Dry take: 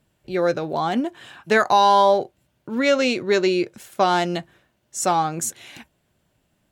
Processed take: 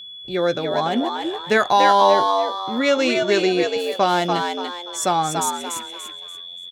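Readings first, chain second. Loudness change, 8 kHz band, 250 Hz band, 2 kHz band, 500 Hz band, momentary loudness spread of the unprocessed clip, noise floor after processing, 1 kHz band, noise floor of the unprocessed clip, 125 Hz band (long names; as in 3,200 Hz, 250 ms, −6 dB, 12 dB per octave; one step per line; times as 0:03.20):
+1.0 dB, +1.5 dB, +1.0 dB, +1.5 dB, +1.5 dB, 14 LU, −37 dBFS, +1.5 dB, −69 dBFS, 0.0 dB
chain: steady tone 3,400 Hz −35 dBFS
echo with shifted repeats 289 ms, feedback 34%, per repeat +88 Hz, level −4.5 dB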